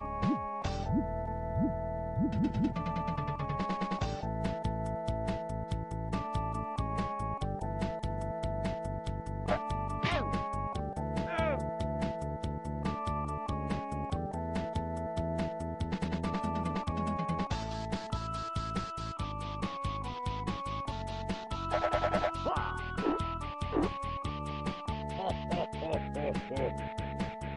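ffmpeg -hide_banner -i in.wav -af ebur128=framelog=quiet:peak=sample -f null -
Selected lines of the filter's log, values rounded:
Integrated loudness:
  I:         -35.2 LUFS
  Threshold: -45.2 LUFS
Loudness range:
  LRA:         2.4 LU
  Threshold: -55.2 LUFS
  LRA low:   -36.2 LUFS
  LRA high:  -33.8 LUFS
Sample peak:
  Peak:      -16.9 dBFS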